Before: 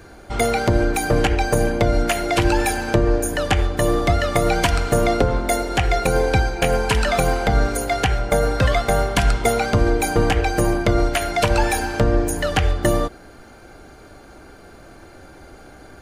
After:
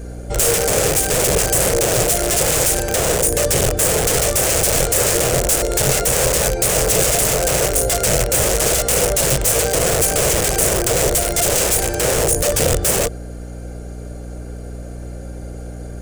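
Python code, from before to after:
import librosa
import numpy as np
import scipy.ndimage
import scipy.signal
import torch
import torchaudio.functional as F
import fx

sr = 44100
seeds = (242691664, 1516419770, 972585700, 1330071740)

y = (np.mod(10.0 ** (16.5 / 20.0) * x + 1.0, 2.0) - 1.0) / 10.0 ** (16.5 / 20.0)
y = fx.graphic_eq(y, sr, hz=(125, 250, 500, 1000, 2000, 4000, 8000), db=(5, -12, 11, -11, -4, -7, 8))
y = fx.add_hum(y, sr, base_hz=60, snr_db=13)
y = y * 10.0 ** (5.0 / 20.0)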